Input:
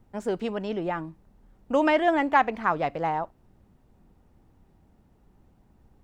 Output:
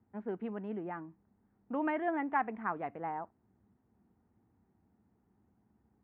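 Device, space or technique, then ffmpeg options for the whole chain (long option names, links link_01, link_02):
bass cabinet: -af "highpass=frequency=72:width=0.5412,highpass=frequency=72:width=1.3066,equalizer=frequency=73:width_type=q:width=4:gain=-4,equalizer=frequency=150:width_type=q:width=4:gain=-7,equalizer=frequency=210:width_type=q:width=4:gain=4,equalizer=frequency=560:width_type=q:width=4:gain=-8,lowpass=frequency=2000:width=0.5412,lowpass=frequency=2000:width=1.3066,equalizer=frequency=1200:width=1.5:gain=-2,volume=-9dB"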